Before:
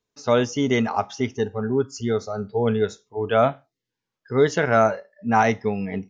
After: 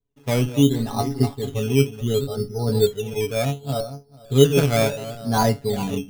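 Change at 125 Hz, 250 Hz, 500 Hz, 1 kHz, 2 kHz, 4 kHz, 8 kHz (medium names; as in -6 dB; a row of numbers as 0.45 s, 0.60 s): +8.0 dB, +2.5 dB, 0.0 dB, -4.5 dB, -5.0 dB, +6.5 dB, no reading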